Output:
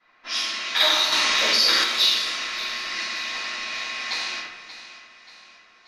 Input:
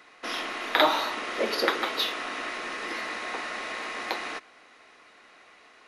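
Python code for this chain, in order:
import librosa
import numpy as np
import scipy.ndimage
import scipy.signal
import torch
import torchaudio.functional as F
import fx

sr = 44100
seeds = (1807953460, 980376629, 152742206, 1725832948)

p1 = fx.peak_eq(x, sr, hz=5600.0, db=13.0, octaves=1.5)
p2 = fx.quant_companded(p1, sr, bits=8)
p3 = 10.0 ** (-12.5 / 20.0) * np.tanh(p2 / 10.0 ** (-12.5 / 20.0))
p4 = p2 + (p3 * librosa.db_to_amplitude(-11.0))
p5 = fx.tone_stack(p4, sr, knobs='5-5-5')
p6 = fx.room_shoebox(p5, sr, seeds[0], volume_m3=560.0, walls='mixed', distance_m=8.9)
p7 = fx.env_lowpass(p6, sr, base_hz=1200.0, full_db=-13.5)
p8 = p7 + fx.echo_feedback(p7, sr, ms=582, feedback_pct=47, wet_db=-14, dry=0)
p9 = fx.env_flatten(p8, sr, amount_pct=70, at=(1.12, 1.84))
y = p9 * librosa.db_to_amplitude(-7.5)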